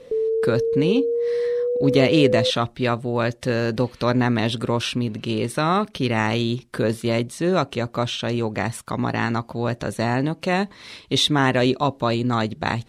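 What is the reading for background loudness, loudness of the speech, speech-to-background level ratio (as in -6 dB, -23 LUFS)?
-23.0 LUFS, -22.5 LUFS, 0.5 dB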